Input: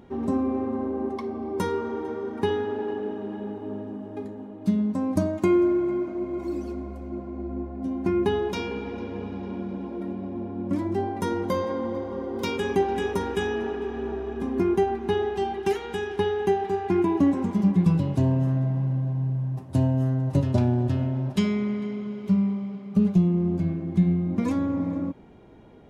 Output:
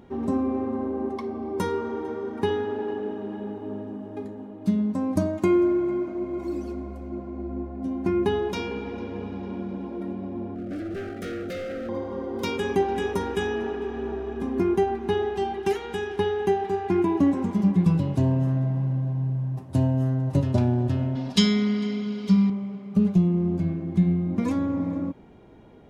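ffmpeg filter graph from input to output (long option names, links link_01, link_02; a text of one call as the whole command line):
ffmpeg -i in.wav -filter_complex "[0:a]asettb=1/sr,asplit=3[link_01][link_02][link_03];[link_01]atrim=end=10.554[link_04];[link_02]atrim=start=10.55:end=11.89,asetpts=PTS-STARTPTS,afade=type=in:duration=0.004:curve=qsin,afade=type=out:start_time=1.336:duration=0.004:curve=qsin,bass=frequency=250:gain=-2,treble=frequency=4000:gain=-4,asoftclip=type=hard:threshold=-29.5dB,asuperstop=centerf=950:order=12:qfactor=2.1[link_05];[link_03]atrim=start=11.886[link_06];[link_04][link_05]acrossfade=duration=0.004:curve1=hsin:curve2=qsin[link_07];[link_07][link_06]acrossfade=duration=0.004:curve1=qsin:curve2=hsin,asettb=1/sr,asplit=3[link_08][link_09][link_10];[link_08]atrim=end=21.154[link_11];[link_09]atrim=start=21.15:end=22.5,asetpts=PTS-STARTPTS,afade=type=in:duration=0.004:curve=qsin,afade=type=out:start_time=1.346:duration=0.004:curve=qsin,equalizer=frequency=4600:width=0.9:gain=15,aecho=1:1:4.2:0.61,atrim=end_sample=59535[link_12];[link_10]atrim=start=22.496[link_13];[link_11][link_12]acrossfade=duration=0.004:curve1=hsin:curve2=qsin[link_14];[link_14][link_13]acrossfade=duration=0.004:curve1=qsin:curve2=hsin" out.wav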